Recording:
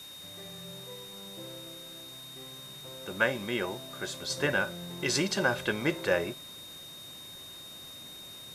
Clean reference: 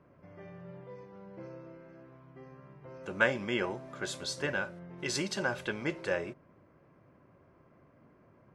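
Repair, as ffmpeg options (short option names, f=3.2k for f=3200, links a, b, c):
-af "bandreject=f=3.7k:w=30,afwtdn=0.0028,asetnsamples=n=441:p=0,asendcmd='4.3 volume volume -5dB',volume=0dB"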